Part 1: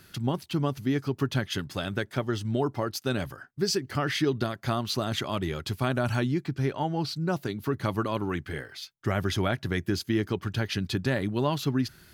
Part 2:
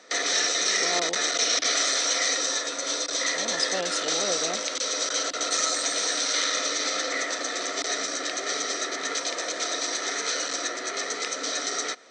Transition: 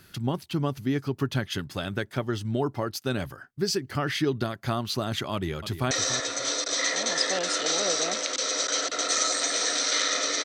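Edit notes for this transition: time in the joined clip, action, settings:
part 1
5.33–5.91 s: echo throw 290 ms, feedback 20%, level -11 dB
5.91 s: go over to part 2 from 2.33 s

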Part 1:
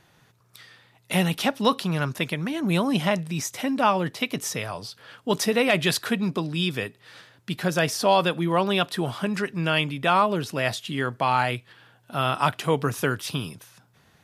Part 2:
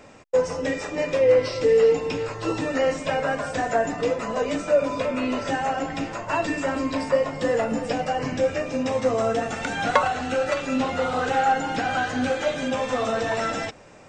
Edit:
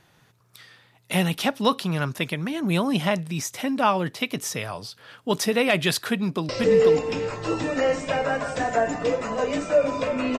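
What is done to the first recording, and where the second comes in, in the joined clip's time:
part 1
6.10–6.49 s: echo throw 490 ms, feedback 15%, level -2 dB
6.49 s: go over to part 2 from 1.47 s

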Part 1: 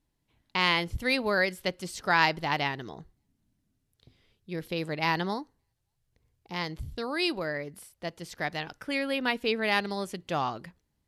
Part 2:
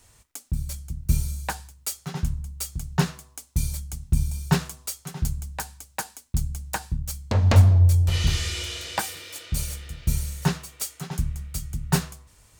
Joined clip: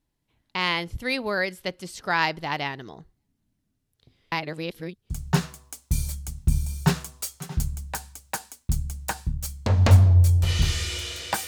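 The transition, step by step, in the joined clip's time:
part 1
4.32–5.10 s: reverse
5.10 s: go over to part 2 from 2.75 s

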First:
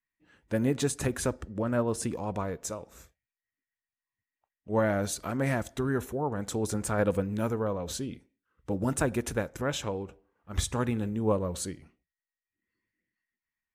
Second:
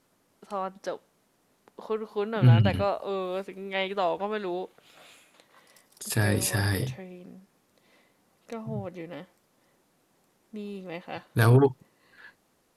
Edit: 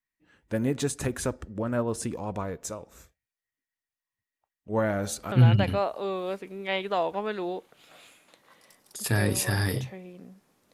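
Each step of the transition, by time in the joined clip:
first
4.91–5.32 s: de-hum 72.31 Hz, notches 39
5.32 s: go over to second from 2.38 s

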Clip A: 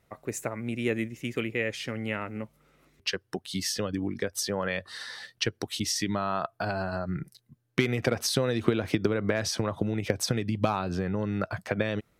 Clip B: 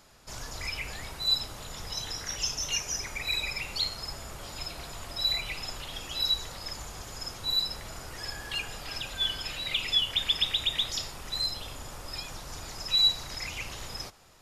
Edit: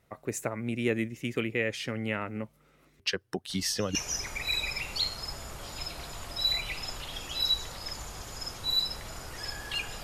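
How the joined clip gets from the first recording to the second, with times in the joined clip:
clip A
3.49 s: add clip B from 2.29 s 0.46 s -16 dB
3.95 s: go over to clip B from 2.75 s

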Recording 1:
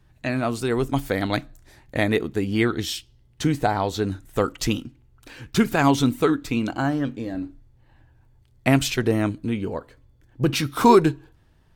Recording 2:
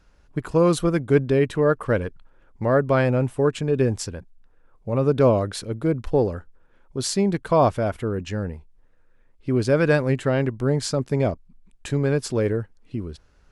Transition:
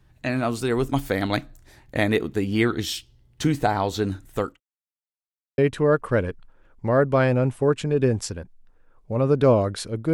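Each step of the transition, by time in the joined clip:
recording 1
4.18–4.60 s: fade out equal-power
4.60–5.58 s: mute
5.58 s: go over to recording 2 from 1.35 s

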